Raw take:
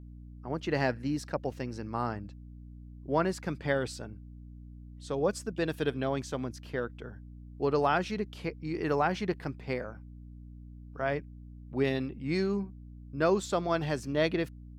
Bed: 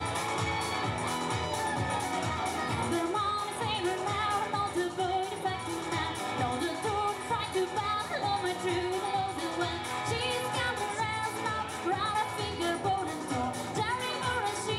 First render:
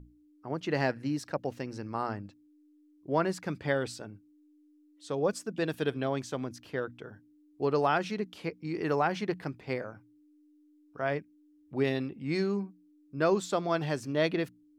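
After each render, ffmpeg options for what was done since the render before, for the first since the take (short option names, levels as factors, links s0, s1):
-af "bandreject=f=60:t=h:w=6,bandreject=f=120:t=h:w=6,bandreject=f=180:t=h:w=6,bandreject=f=240:t=h:w=6"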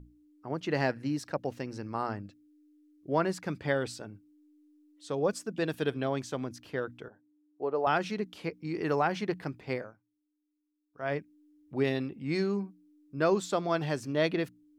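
-filter_complex "[0:a]asettb=1/sr,asplit=3[s0][s1][s2];[s0]atrim=end=2.224[s3];[s1]atrim=start=2.22:end=3.12,asetpts=PTS-STARTPTS,afade=t=in:d=0.004:c=qsin,afade=t=out:st=0.896:d=0.004:c=qsin,asuperstop=centerf=930:order=4:qfactor=2.2[s4];[s2]atrim=start=3.116[s5];[s3][s4]acrossfade=d=0.004:c1=hsin:c2=qsin[s6];[s6][s5]acrossfade=d=0.004:c1=qsin:c2=hsin,asettb=1/sr,asplit=3[s7][s8][s9];[s7]atrim=end=7.084[s10];[s8]atrim=start=7.08:end=7.87,asetpts=PTS-STARTPTS,afade=t=in:d=0.004:c=qsin,afade=t=out:st=0.786:d=0.004:c=qsin,bandpass=f=640:t=q:w=1.2[s11];[s9]atrim=start=7.866[s12];[s10][s11]acrossfade=d=0.004:c1=hsin:c2=qsin[s13];[s13][s12]acrossfade=d=0.004:c1=qsin:c2=hsin,asplit=3[s14][s15][s16];[s14]atrim=end=9.97,asetpts=PTS-STARTPTS,afade=t=out:st=9.76:d=0.21:silence=0.112202[s17];[s15]atrim=start=9.97:end=10.92,asetpts=PTS-STARTPTS,volume=0.112[s18];[s16]atrim=start=10.92,asetpts=PTS-STARTPTS,afade=t=in:d=0.21:silence=0.112202[s19];[s17][s18][s19]concat=n=3:v=0:a=1"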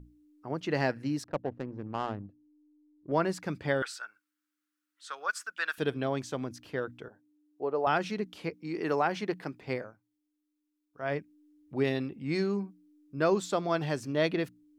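-filter_complex "[0:a]asettb=1/sr,asplit=3[s0][s1][s2];[s0]atrim=end=1.244[s3];[s1]atrim=start=1.24:end=3.12,asetpts=PTS-STARTPTS,afade=t=in:d=0.004:c=qsin,afade=t=out:st=1.876:d=0.004:c=qsin,adynamicsmooth=sensitivity=2.5:basefreq=510[s4];[s2]atrim=start=3.116[s5];[s3][s4]acrossfade=d=0.004:c1=hsin:c2=qsin[s6];[s6][s5]acrossfade=d=0.004:c1=qsin:c2=hsin,asettb=1/sr,asplit=3[s7][s8][s9];[s7]atrim=end=3.824[s10];[s8]atrim=start=3.82:end=5.78,asetpts=PTS-STARTPTS,afade=t=in:d=0.004:c=qsin,afade=t=out:st=1.956:d=0.004:c=qsin,highpass=f=1400:t=q:w=4.8[s11];[s9]atrim=start=5.776[s12];[s10][s11]acrossfade=d=0.004:c1=hsin:c2=qsin[s13];[s13][s12]acrossfade=d=0.004:c1=qsin:c2=hsin,asettb=1/sr,asplit=3[s14][s15][s16];[s14]atrim=end=8.544[s17];[s15]atrim=start=8.54:end=9.62,asetpts=PTS-STARTPTS,afade=t=in:d=0.004:c=qsin,afade=t=out:st=1.076:d=0.004:c=qsin,highpass=180[s18];[s16]atrim=start=9.616[s19];[s17][s18]acrossfade=d=0.004:c1=hsin:c2=qsin[s20];[s20][s19]acrossfade=d=0.004:c1=qsin:c2=hsin"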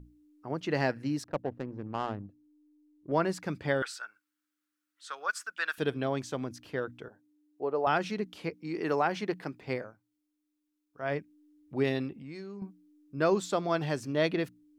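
-filter_complex "[0:a]asettb=1/sr,asplit=3[s0][s1][s2];[s0]atrim=end=12.114[s3];[s1]atrim=start=12.11:end=12.62,asetpts=PTS-STARTPTS,afade=t=in:d=0.004:c=qsin,afade=t=out:st=0.506:d=0.004:c=qsin,acompressor=threshold=0.00631:ratio=3:attack=3.2:release=140:knee=1:detection=peak[s4];[s2]atrim=start=12.616[s5];[s3][s4]acrossfade=d=0.004:c1=hsin:c2=qsin[s6];[s6][s5]acrossfade=d=0.004:c1=qsin:c2=hsin"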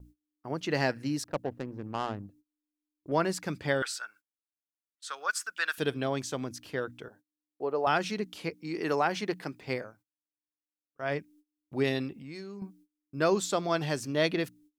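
-af "agate=range=0.0501:threshold=0.00141:ratio=16:detection=peak,highshelf=f=3500:g=8.5"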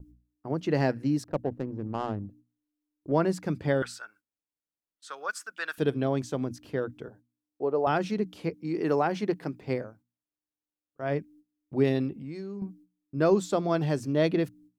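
-af "tiltshelf=f=890:g=6.5,bandreject=f=60:t=h:w=6,bandreject=f=120:t=h:w=6,bandreject=f=180:t=h:w=6,bandreject=f=240:t=h:w=6"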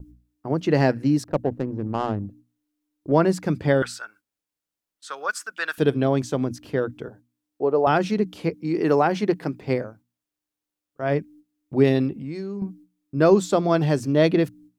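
-af "volume=2.11"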